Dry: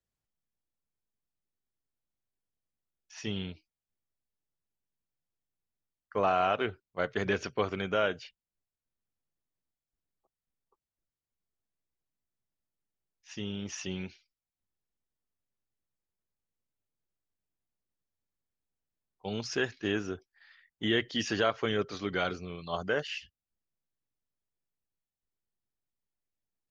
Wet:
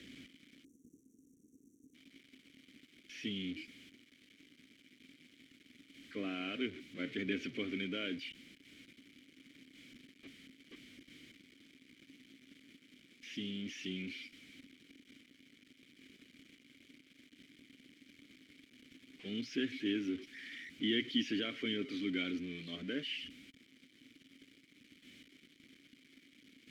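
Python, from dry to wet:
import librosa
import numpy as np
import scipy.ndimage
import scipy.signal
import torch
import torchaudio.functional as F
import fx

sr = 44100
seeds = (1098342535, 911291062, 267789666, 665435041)

y = x + 0.5 * 10.0 ** (-34.5 / 20.0) * np.sign(x)
y = fx.vowel_filter(y, sr, vowel='i')
y = fx.spec_erase(y, sr, start_s=0.64, length_s=1.3, low_hz=510.0, high_hz=5600.0)
y = y * librosa.db_to_amplitude(5.5)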